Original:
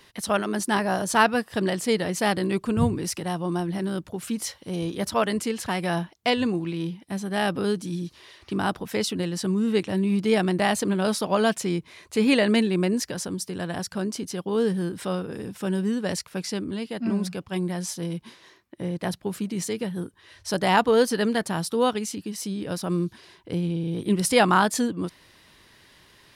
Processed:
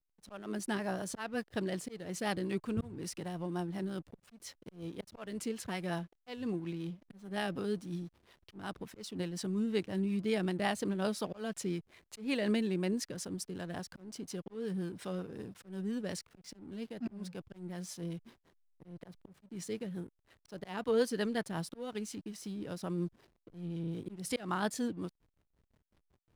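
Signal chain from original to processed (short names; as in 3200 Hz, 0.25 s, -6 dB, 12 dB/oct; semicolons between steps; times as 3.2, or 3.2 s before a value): auto swell 0.269 s; rotary speaker horn 5.5 Hz; backlash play -43 dBFS; gain -8.5 dB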